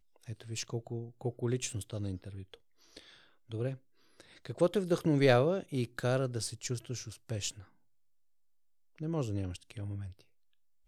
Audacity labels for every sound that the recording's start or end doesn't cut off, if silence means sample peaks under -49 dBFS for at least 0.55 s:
8.980000	10.210000	sound